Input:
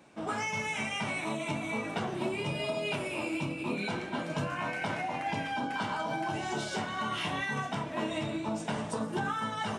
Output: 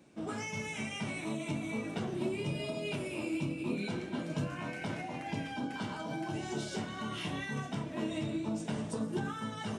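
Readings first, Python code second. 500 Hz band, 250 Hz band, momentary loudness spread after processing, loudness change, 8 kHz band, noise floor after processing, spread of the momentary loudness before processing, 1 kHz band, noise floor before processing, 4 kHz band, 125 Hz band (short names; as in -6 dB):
-3.5 dB, 0.0 dB, 3 LU, -3.5 dB, -3.0 dB, -43 dBFS, 2 LU, -9.0 dB, -39 dBFS, -5.0 dB, 0.0 dB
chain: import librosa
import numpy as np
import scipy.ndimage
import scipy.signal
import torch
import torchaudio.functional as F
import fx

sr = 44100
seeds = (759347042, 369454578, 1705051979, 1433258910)

y = fx.curve_eq(x, sr, hz=(350.0, 880.0, 6000.0), db=(0, -10, -3))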